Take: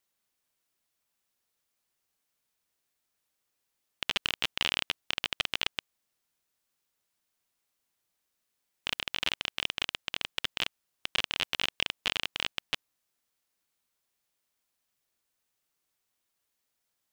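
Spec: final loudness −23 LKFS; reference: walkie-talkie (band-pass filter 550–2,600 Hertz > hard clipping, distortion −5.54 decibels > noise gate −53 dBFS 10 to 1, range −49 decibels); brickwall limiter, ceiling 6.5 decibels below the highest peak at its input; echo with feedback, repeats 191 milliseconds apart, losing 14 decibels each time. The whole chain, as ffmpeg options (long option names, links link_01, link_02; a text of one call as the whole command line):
ffmpeg -i in.wav -af "alimiter=limit=-14dB:level=0:latency=1,highpass=550,lowpass=2600,aecho=1:1:191|382:0.2|0.0399,asoftclip=type=hard:threshold=-30dB,agate=range=-49dB:threshold=-53dB:ratio=10,volume=22dB" out.wav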